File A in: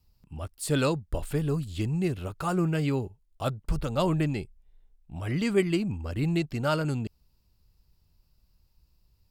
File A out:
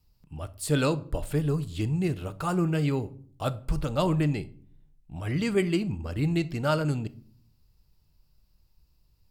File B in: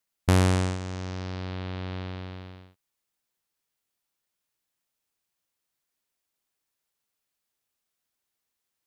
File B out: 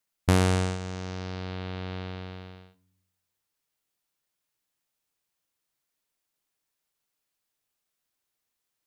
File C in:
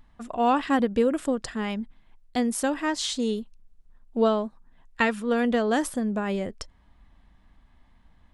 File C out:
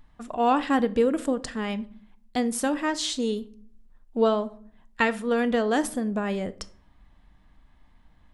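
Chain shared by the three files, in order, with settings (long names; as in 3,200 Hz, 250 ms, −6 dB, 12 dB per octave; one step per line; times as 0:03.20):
rectangular room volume 610 cubic metres, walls furnished, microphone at 0.47 metres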